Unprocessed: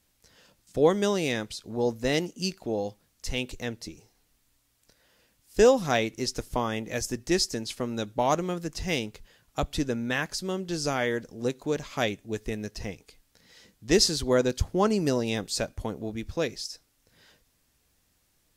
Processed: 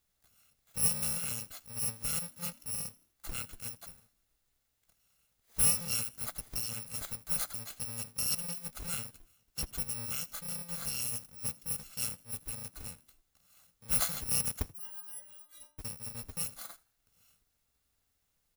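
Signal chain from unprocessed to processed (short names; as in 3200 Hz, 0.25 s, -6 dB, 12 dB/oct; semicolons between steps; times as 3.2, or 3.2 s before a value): FFT order left unsorted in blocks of 128 samples; 14.72–15.79 metallic resonator 290 Hz, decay 0.5 s, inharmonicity 0.008; frequency-shifting echo 81 ms, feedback 39%, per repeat +62 Hz, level -23.5 dB; gain -8.5 dB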